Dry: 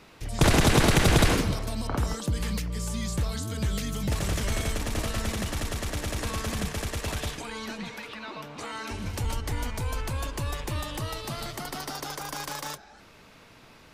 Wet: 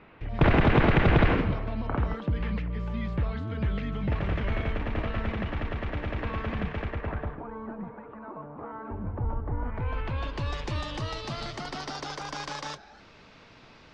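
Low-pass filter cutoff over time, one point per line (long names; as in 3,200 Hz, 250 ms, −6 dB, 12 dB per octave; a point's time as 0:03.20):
low-pass filter 24 dB per octave
0:06.81 2,600 Hz
0:07.49 1,200 Hz
0:09.59 1,200 Hz
0:09.84 2,300 Hz
0:10.58 5,600 Hz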